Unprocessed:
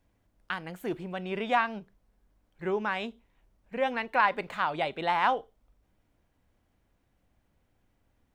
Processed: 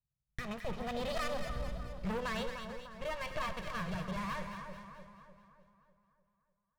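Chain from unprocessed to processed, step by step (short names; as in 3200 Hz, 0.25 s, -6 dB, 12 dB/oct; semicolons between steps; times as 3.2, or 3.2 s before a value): minimum comb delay 2.1 ms; Doppler pass-by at 1.99, 19 m/s, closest 1.3 m; LPF 3100 Hz 6 dB/oct; resonant low shelf 180 Hz +9.5 dB, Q 3; sample leveller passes 5; compressor, threshold -45 dBFS, peak gain reduction 9.5 dB; resonator 150 Hz, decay 1.5 s, mix 60%; varispeed +23%; split-band echo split 1500 Hz, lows 0.3 s, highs 0.217 s, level -7 dB; on a send at -17 dB: reverb RT60 0.75 s, pre-delay 50 ms; on the sum: gain +17 dB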